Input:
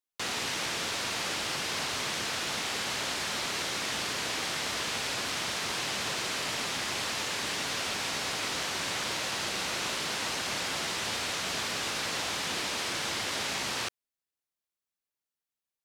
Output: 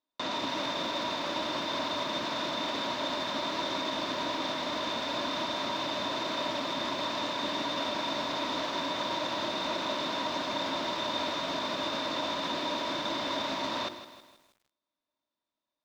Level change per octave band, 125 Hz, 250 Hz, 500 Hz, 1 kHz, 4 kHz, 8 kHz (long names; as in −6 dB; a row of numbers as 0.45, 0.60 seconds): −3.0, +6.0, +5.5, +4.0, −1.0, −13.5 decibels